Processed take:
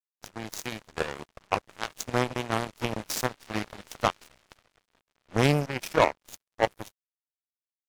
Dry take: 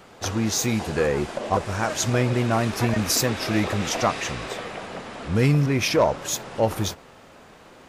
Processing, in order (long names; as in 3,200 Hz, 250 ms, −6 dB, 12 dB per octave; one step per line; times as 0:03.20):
harmonic generator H 3 −9 dB, 4 −40 dB, 8 −35 dB, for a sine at −10 dBFS
dead-zone distortion −51.5 dBFS